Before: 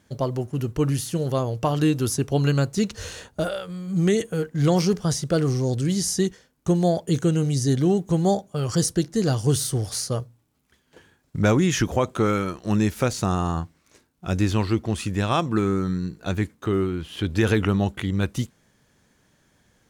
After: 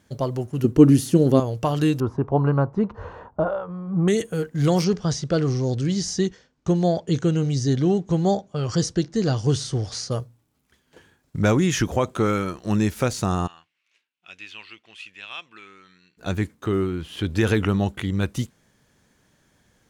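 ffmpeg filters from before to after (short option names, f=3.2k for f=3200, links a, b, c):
-filter_complex "[0:a]asettb=1/sr,asplit=3[a][b][c];[a]atrim=end=0.644[d];[b]atrim=start=0.64:end=1.4,asetpts=PTS-STARTPTS,afade=t=in:d=0.004:c=qsin,afade=t=out:st=0.756:d=0.004:c=qsin,equalizer=f=280:t=o:w=1.5:g=14[e];[c]atrim=start=1.396[f];[d][e]acrossfade=d=0.004:c1=hsin:c2=qsin[g];[g][f]acrossfade=d=0.004:c1=qsin:c2=hsin,asettb=1/sr,asplit=3[h][i][j];[h]atrim=end=2.004[k];[i]atrim=start=2:end=4.08,asetpts=PTS-STARTPTS,afade=t=in:d=0.004:c=qsin,afade=t=out:st=2.076:d=0.004:c=qsin,lowpass=f=1k:t=q:w=3.8[l];[j]atrim=start=4.076[m];[k][l]acrossfade=d=0.004:c1=hsin:c2=qsin[n];[n][m]acrossfade=d=0.004:c1=qsin:c2=hsin,asettb=1/sr,asplit=3[o][p][q];[o]atrim=end=4.844[r];[p]atrim=start=4.84:end=10.11,asetpts=PTS-STARTPTS,afade=t=in:d=0.004:c=qsin,afade=t=out:st=5.266:d=0.004:c=qsin,lowpass=f=6.5k:w=0.5412,lowpass=f=6.5k:w=1.3066[s];[q]atrim=start=10.106[t];[r][s]acrossfade=d=0.004:c1=hsin:c2=qsin[u];[u][t]acrossfade=d=0.004:c1=qsin:c2=hsin,asplit=3[v][w][x];[v]afade=t=out:st=13.46:d=0.02[y];[w]bandpass=f=2.7k:t=q:w=3.6,afade=t=in:st=13.46:d=0.02,afade=t=out:st=16.17:d=0.02[z];[x]afade=t=in:st=16.17:d=0.02[aa];[y][z][aa]amix=inputs=3:normalize=0"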